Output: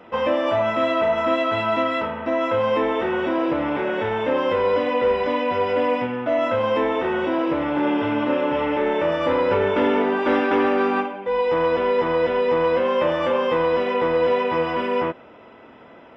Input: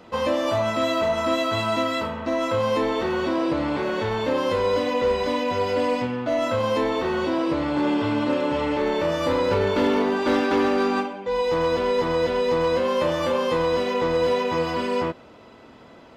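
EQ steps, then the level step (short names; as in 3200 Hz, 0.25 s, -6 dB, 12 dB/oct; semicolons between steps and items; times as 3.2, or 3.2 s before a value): polynomial smoothing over 25 samples; low shelf 190 Hz -9.5 dB; notch 1100 Hz, Q 20; +3.5 dB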